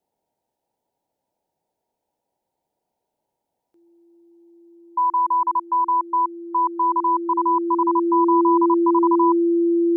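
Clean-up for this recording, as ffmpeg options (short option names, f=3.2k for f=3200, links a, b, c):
-af "bandreject=f=340:w=30,agate=range=-21dB:threshold=-73dB"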